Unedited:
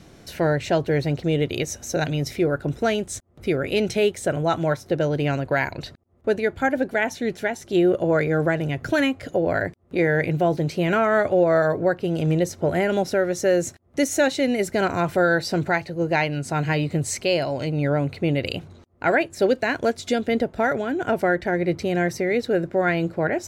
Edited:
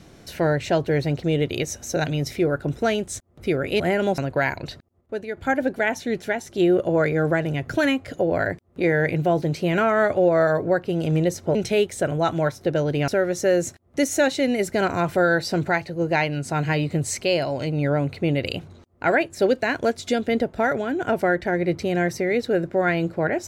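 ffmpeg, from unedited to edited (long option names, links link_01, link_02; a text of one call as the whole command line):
ffmpeg -i in.wav -filter_complex "[0:a]asplit=7[link_01][link_02][link_03][link_04][link_05][link_06][link_07];[link_01]atrim=end=3.802[link_08];[link_02]atrim=start=12.698:end=13.082[link_09];[link_03]atrim=start=5.328:end=6.16,asetpts=PTS-STARTPTS,afade=type=out:start_time=0.512:duration=0.32:curve=log:silence=0.398107[link_10];[link_04]atrim=start=6.16:end=6.52,asetpts=PTS-STARTPTS,volume=-8dB[link_11];[link_05]atrim=start=6.52:end=12.702,asetpts=PTS-STARTPTS,afade=type=in:duration=0.32:curve=log:silence=0.398107[link_12];[link_06]atrim=start=3.798:end=5.332[link_13];[link_07]atrim=start=13.078[link_14];[link_08][link_09]acrossfade=duration=0.004:curve1=hsin:curve2=hsin[link_15];[link_10][link_11][link_12]concat=n=3:v=0:a=1[link_16];[link_15][link_16]acrossfade=duration=0.004:curve1=hsin:curve2=hsin[link_17];[link_17][link_13]acrossfade=duration=0.004:curve1=hsin:curve2=hsin[link_18];[link_18][link_14]acrossfade=duration=0.004:curve1=hsin:curve2=hsin" out.wav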